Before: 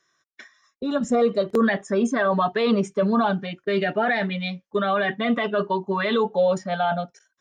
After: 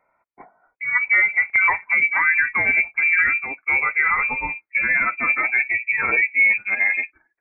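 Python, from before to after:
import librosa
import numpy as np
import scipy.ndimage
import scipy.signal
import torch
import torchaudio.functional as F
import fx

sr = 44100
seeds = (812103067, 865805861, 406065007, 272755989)

y = fx.pitch_glide(x, sr, semitones=-11.5, runs='starting unshifted')
y = fx.freq_invert(y, sr, carrier_hz=2500)
y = y * 10.0 ** (4.0 / 20.0)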